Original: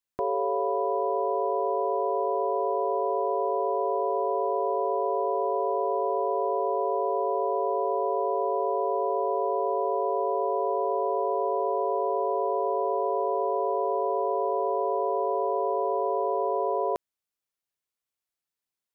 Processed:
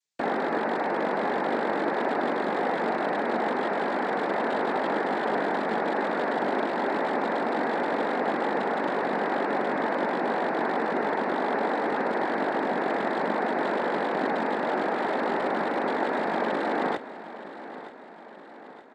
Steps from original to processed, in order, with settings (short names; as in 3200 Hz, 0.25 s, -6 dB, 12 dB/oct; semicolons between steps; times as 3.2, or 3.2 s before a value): rattling part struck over -38 dBFS, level -28 dBFS; noise vocoder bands 6; on a send: feedback echo 0.922 s, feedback 52%, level -14.5 dB